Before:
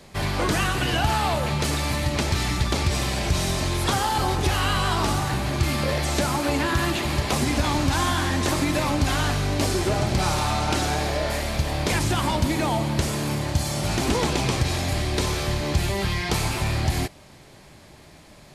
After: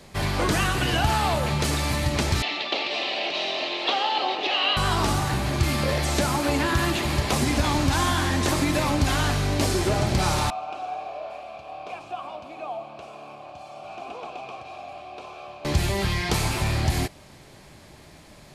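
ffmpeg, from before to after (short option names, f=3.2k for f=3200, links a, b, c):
-filter_complex "[0:a]asettb=1/sr,asplit=3[a][b][c];[a]atrim=end=2.424[d];[b]atrim=start=2.42:end=4.77,asetpts=PTS-STARTPTS,afade=t=in:d=0.004:c=qsin,afade=t=out:st=2.346:d=0.004:c=qsin,highpass=f=340:w=0.5412,highpass=f=340:w=1.3066,equalizer=f=390:t=q:w=4:g=-4,equalizer=f=680:t=q:w=4:g=5,equalizer=f=1k:t=q:w=4:g=-4,equalizer=f=1.5k:t=q:w=4:g=-8,equalizer=f=2.8k:t=q:w=4:g=9,equalizer=f=4k:t=q:w=4:g=5,lowpass=f=4.2k:w=0.5412,lowpass=f=4.2k:w=1.3066[e];[c]atrim=start=4.766[f];[d][e]acrossfade=d=0.004:c1=hsin:c2=qsin[g];[g][f]acrossfade=d=0.004:c1=qsin:c2=hsin,asettb=1/sr,asplit=3[h][i][j];[h]atrim=end=10.504[k];[i]atrim=start=10.5:end=15.65,asetpts=PTS-STARTPTS,afade=t=in:d=0.004:c=qsin,afade=t=out:st=5.146:d=0.004:c=qsin,asplit=3[l][m][n];[l]bandpass=f=730:t=q:w=8,volume=0dB[o];[m]bandpass=f=1.09k:t=q:w=8,volume=-6dB[p];[n]bandpass=f=2.44k:t=q:w=8,volume=-9dB[q];[o][p][q]amix=inputs=3:normalize=0[r];[j]atrim=start=15.646[s];[k][r]acrossfade=d=0.004:c1=hsin:c2=qsin[t];[t][s]acrossfade=d=0.004:c1=qsin:c2=hsin"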